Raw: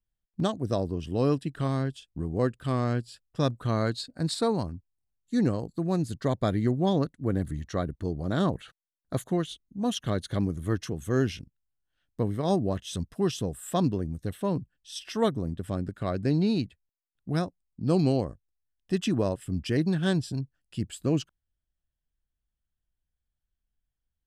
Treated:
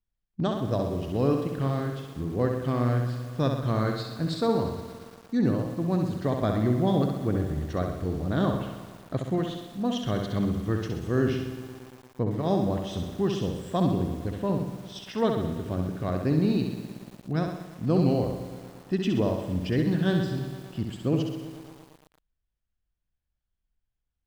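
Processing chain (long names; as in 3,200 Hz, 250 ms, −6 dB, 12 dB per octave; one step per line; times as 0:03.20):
high-frequency loss of the air 130 metres
flutter between parallel walls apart 11.2 metres, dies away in 0.73 s
feedback echo at a low word length 115 ms, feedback 80%, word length 7 bits, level −14 dB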